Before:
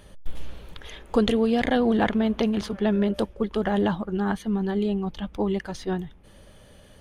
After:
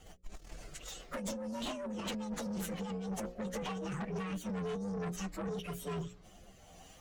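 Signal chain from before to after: frequency axis rescaled in octaves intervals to 128%; bass shelf 410 Hz -6.5 dB; hum notches 60/120/180/240/300/360/420/480/540 Hz; compressor with a negative ratio -34 dBFS, ratio -1; rotary cabinet horn 7.5 Hz, later 1.2 Hz, at 3.70 s; valve stage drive 36 dB, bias 0.25; trim +2 dB

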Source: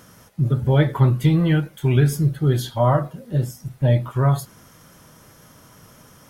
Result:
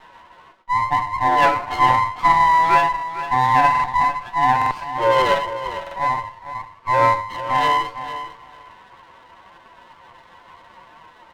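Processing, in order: every band turned upside down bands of 1 kHz; time stretch by phase-locked vocoder 1.8×; comb 5 ms, depth 59%; on a send: feedback delay 453 ms, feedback 16%, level -12 dB; on the sum: gate with hold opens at -43 dBFS; peaking EQ 1.2 kHz +12 dB 1.4 oct; mistuned SSB +120 Hz 150–3400 Hz; buffer glitch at 3.70/4.57/5.82 s, samples 2048, times 2; sliding maximum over 9 samples; trim -3 dB

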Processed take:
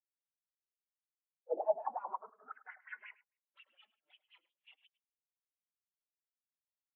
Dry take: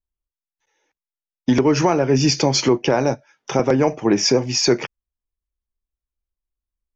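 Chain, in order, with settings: frequency axis rescaled in octaves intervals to 129%; tilt shelf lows +4 dB, about 1.3 kHz; in parallel at -2 dB: peak limiter -15.5 dBFS, peak gain reduction 12 dB; on the sum: full-wave rectifier; wah-wah 5.6 Hz 220–3000 Hz, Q 4; saturation -30.5 dBFS, distortion -7 dB; band-pass sweep 540 Hz -> 3.2 kHz, 1.32–3.50 s; on a send: multi-tap echo 104/265 ms -8/-17.5 dB; on the sum: spectral contrast expander 2.5:1; trim +8 dB

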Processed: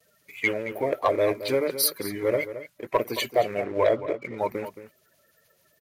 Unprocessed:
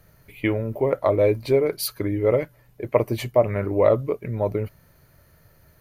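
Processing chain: coarse spectral quantiser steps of 30 dB; high-pass 1.3 kHz 6 dB/octave; gate with hold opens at -56 dBFS; 3.64–4.38 s: low-pass 3.8 kHz 24 dB/octave; waveshaping leveller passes 1; echo from a far wall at 38 m, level -12 dB; trim +2.5 dB

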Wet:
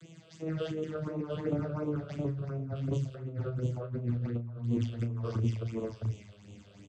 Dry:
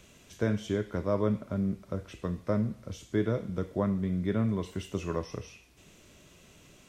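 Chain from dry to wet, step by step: vocoder on a note that slides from E3, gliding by -9 st; treble shelf 4.4 kHz +8 dB; band-stop 5.5 kHz, Q 26; on a send: multi-tap echo 115/175/666 ms -20/-10/-4.5 dB; on the sum: dynamic bell 1.3 kHz, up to +5 dB, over -54 dBFS, Q 2.1; compressor with a negative ratio -36 dBFS, ratio -1; phase shifter stages 8, 2.8 Hz, lowest notch 250–1600 Hz; doubling 34 ms -10 dB; trim +3.5 dB

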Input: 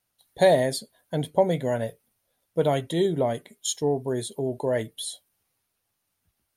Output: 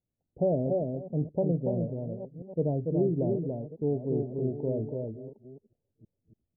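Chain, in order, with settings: chunks repeated in reverse 605 ms, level -13 dB; Gaussian low-pass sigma 18 samples; delay 286 ms -4 dB

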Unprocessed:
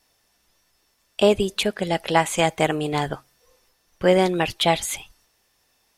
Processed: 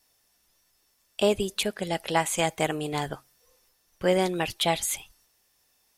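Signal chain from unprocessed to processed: treble shelf 6.7 kHz +9 dB; trim -6 dB

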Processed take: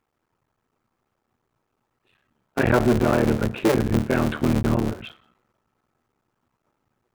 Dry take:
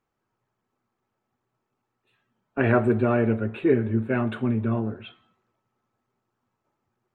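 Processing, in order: cycle switcher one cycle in 3, muted; in parallel at 0 dB: peak limiter -15.5 dBFS, peak gain reduction 7.5 dB; on the sum: saturation -6.5 dBFS, distortion -23 dB

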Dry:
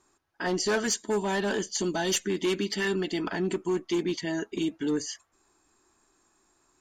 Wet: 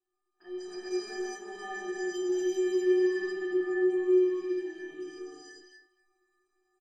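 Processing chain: chunks repeated in reverse 134 ms, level -0.5 dB; treble shelf 4.2 kHz -11.5 dB; inharmonic resonator 360 Hz, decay 0.77 s, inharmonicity 0.03; speakerphone echo 240 ms, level -15 dB; gated-style reverb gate 430 ms rising, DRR -7.5 dB

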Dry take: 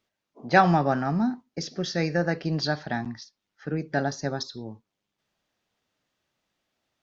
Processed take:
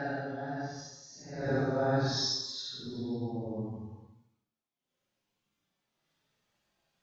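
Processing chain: trance gate "xxx.xxxx...xx" 130 bpm -12 dB; Paulstretch 4.9×, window 0.10 s, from 3.96 s; gated-style reverb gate 320 ms falling, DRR 8.5 dB

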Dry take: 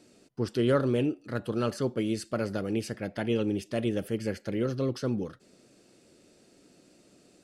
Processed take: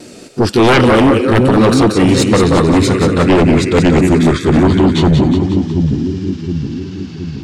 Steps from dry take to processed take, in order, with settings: pitch bend over the whole clip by -9 st starting unshifted; vibrato 0.71 Hz 15 cents; two-band feedback delay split 360 Hz, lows 720 ms, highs 181 ms, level -5.5 dB; sine folder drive 11 dB, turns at -14 dBFS; trim +9 dB

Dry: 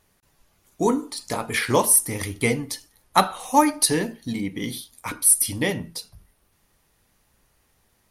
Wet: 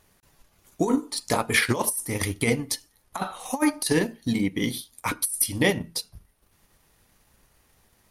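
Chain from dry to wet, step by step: transient shaper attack +1 dB, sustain -7 dB; compressor with a negative ratio -21 dBFS, ratio -0.5

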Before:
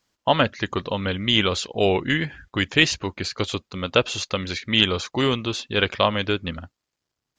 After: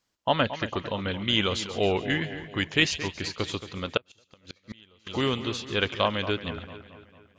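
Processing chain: two-band feedback delay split 2.6 kHz, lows 225 ms, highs 138 ms, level -12 dB; 3.97–5.07 s: inverted gate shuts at -17 dBFS, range -31 dB; trim -5 dB

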